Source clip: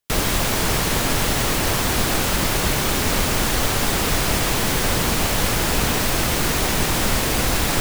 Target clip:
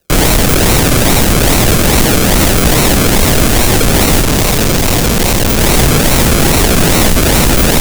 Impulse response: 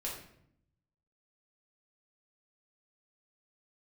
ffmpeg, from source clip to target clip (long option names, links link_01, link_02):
-filter_complex "[0:a]lowpass=8100,aemphasis=mode=reproduction:type=cd,acrusher=samples=38:mix=1:aa=0.000001:lfo=1:lforange=22.8:lforate=2.4,acrossover=split=480|3000[link_01][link_02][link_03];[link_02]acompressor=threshold=-31dB:ratio=6[link_04];[link_01][link_04][link_03]amix=inputs=3:normalize=0,asettb=1/sr,asplit=3[link_05][link_06][link_07];[link_05]atrim=end=4.224[link_08];[link_06]atrim=start=4.22:end=5.59,asetpts=PTS-STARTPTS,afade=type=in:duration=0.004:curve=qsin,afade=type=out:start_time=1.366:duration=0.004:curve=qsin,asoftclip=type=hard:threshold=-24.5dB[link_09];[link_07]atrim=start=5.586[link_10];[link_08][link_09]acrossfade=duration=0.004:curve1=hsin:curve2=qsin[link_11];[link_11][link_10]acrossfade=duration=0.004:curve1=qsin:curve2=hsin,crystalizer=i=4.5:c=0,asoftclip=type=tanh:threshold=-21dB,alimiter=level_in=25dB:limit=-1dB:release=50:level=0:latency=1,volume=-3.5dB"